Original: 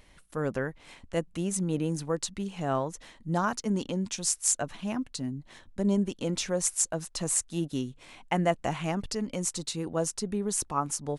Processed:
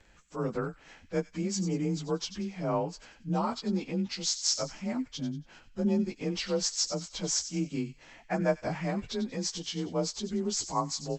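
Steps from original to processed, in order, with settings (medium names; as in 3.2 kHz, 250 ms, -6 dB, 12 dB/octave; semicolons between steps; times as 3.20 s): frequency axis rescaled in octaves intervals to 91%; feedback echo behind a high-pass 93 ms, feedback 35%, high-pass 2.4 kHz, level -11 dB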